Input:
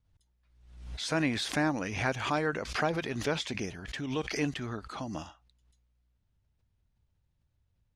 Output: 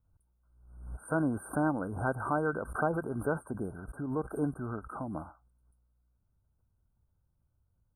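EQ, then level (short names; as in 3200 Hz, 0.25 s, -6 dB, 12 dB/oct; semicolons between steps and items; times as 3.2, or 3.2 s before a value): brick-wall FIR band-stop 1600–8400 Hz; 0.0 dB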